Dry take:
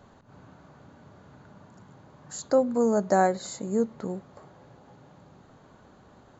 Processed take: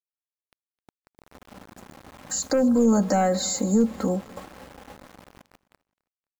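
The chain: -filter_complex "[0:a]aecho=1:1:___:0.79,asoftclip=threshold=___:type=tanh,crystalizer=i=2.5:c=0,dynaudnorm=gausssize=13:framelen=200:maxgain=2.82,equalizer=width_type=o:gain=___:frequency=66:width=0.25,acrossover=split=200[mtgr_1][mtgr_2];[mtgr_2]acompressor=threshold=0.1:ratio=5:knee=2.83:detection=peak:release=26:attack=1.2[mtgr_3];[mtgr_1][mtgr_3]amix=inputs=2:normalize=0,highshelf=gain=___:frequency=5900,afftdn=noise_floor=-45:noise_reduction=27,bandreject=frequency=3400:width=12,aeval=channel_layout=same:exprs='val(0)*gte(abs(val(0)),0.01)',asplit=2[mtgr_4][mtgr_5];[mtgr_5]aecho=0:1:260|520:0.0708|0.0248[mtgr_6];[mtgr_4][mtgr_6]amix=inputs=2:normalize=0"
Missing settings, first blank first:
3.8, 0.282, 8, -6.5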